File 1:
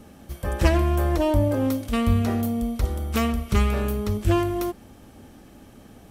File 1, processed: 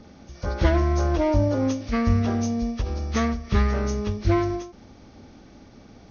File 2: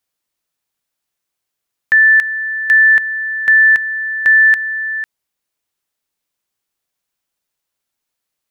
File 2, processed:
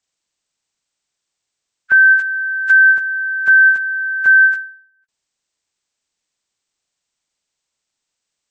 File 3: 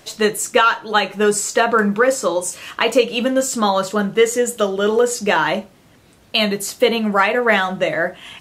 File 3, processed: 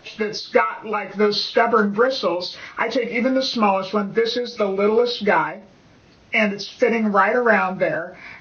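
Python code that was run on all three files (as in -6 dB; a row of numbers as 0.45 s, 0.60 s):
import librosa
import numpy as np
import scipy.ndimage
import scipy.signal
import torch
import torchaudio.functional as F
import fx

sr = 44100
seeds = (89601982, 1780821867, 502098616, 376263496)

y = fx.freq_compress(x, sr, knee_hz=1200.0, ratio=1.5)
y = fx.end_taper(y, sr, db_per_s=110.0)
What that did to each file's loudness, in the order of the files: -0.5 LU, -0.5 LU, -2.5 LU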